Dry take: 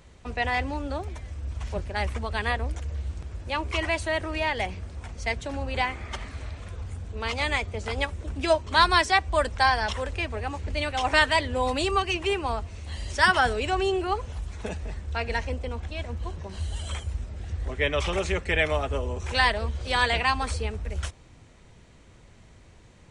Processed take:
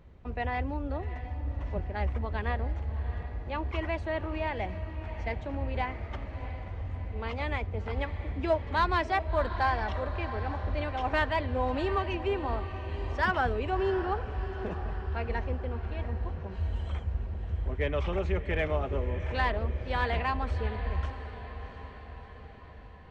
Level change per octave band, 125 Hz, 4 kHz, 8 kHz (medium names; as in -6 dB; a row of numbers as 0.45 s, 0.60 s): -0.5 dB, -14.0 dB, under -20 dB